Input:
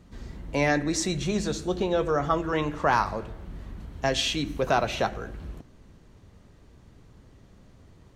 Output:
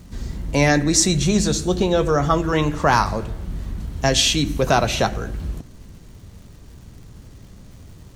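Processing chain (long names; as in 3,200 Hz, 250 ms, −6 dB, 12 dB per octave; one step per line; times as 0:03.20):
bass and treble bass +6 dB, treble +9 dB
surface crackle 360 per second −49 dBFS
level +5.5 dB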